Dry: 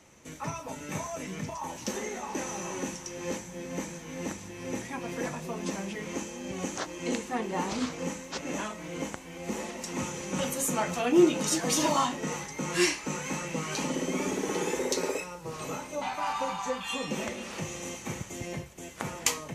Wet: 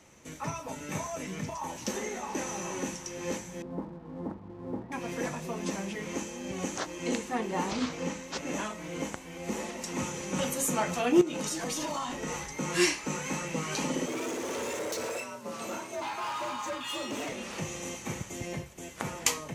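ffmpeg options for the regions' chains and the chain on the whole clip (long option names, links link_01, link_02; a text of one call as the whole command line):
ffmpeg -i in.wav -filter_complex "[0:a]asettb=1/sr,asplit=3[link_01][link_02][link_03];[link_01]atrim=end=3.624[link_04];[link_02]atrim=start=3.62:end=4.92,asetpts=PTS-STARTPTS,afade=type=in:duration=0.004:curve=qsin,afade=type=out:start_time=1.296:duration=0.004:curve=qsin,lowpass=frequency=1100:width=0.5412,lowpass=frequency=1100:width=1.3066,equalizer=frequency=540:width_type=o:width=0.3:gain=-4,aeval=exprs='sgn(val(0))*max(abs(val(0))-0.00112,0)':channel_layout=same[link_05];[link_03]atrim=start=4.916[link_06];[link_04][link_05]acrossfade=duration=0.004:curve1=hsin:curve2=qsin[link_07];[link_07][link_06]acrossfade=duration=0.004:curve1=qsin:curve2=hsin,asettb=1/sr,asplit=3[link_08][link_09][link_10];[link_08]atrim=end=7.714[link_11];[link_09]atrim=start=7.71:end=8.32,asetpts=PTS-STARTPTS,afade=type=in:duration=0.004:curve=qsin,afade=type=out:start_time=0.606:duration=0.004:curve=qsin,highshelf=frequency=5500:gain=6.5,acrossover=split=5700[link_12][link_13];[link_13]acompressor=threshold=-57dB:ratio=4:attack=1:release=60[link_14];[link_12][link_14]amix=inputs=2:normalize=0[link_15];[link_10]atrim=start=8.316[link_16];[link_11][link_15]acrossfade=duration=0.004:curve1=hsin:curve2=qsin[link_17];[link_17][link_16]acrossfade=duration=0.004:curve1=qsin:curve2=hsin,asettb=1/sr,asplit=3[link_18][link_19][link_20];[link_18]atrim=end=11.214[link_21];[link_19]atrim=start=11.21:end=12.53,asetpts=PTS-STARTPTS,afade=type=in:duration=0.004:curve=qsin,afade=type=out:start_time=1.316:duration=0.004:curve=qsin,asubboost=boost=11:cutoff=72,acompressor=threshold=-29dB:ratio=16:attack=3.2:release=140:knee=1:detection=peak[link_22];[link_20]atrim=start=12.526[link_23];[link_21][link_22]acrossfade=duration=0.004:curve1=hsin:curve2=qsin[link_24];[link_24][link_23]acrossfade=duration=0.004:curve1=qsin:curve2=hsin,asettb=1/sr,asplit=3[link_25][link_26][link_27];[link_25]atrim=end=14.064[link_28];[link_26]atrim=start=14.06:end=17.32,asetpts=PTS-STARTPTS,afade=type=in:duration=0.004:curve=qsin,afade=type=out:start_time=3.256:duration=0.004:curve=qsin,volume=31.5dB,asoftclip=hard,volume=-31.5dB,afreqshift=66[link_29];[link_27]atrim=start=17.316[link_30];[link_28][link_29]acrossfade=duration=0.004:curve1=hsin:curve2=qsin[link_31];[link_31][link_30]acrossfade=duration=0.004:curve1=qsin:curve2=hsin" out.wav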